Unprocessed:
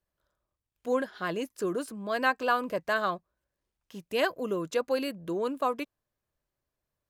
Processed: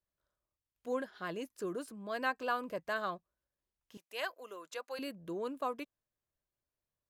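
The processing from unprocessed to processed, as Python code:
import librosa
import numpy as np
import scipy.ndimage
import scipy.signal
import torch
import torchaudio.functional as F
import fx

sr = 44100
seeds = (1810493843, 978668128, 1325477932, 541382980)

y = fx.highpass(x, sr, hz=730.0, slope=12, at=(3.97, 4.99))
y = F.gain(torch.from_numpy(y), -8.0).numpy()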